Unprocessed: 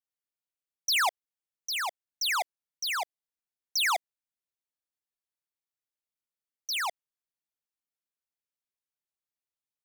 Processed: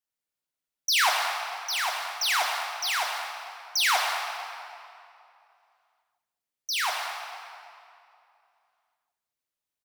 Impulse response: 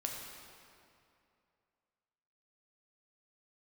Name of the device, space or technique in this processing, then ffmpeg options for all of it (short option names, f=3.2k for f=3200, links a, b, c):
cave: -filter_complex "[0:a]aecho=1:1:214:0.2[a];[1:a]atrim=start_sample=2205[b];[a][b]afir=irnorm=-1:irlink=0,volume=3.5dB"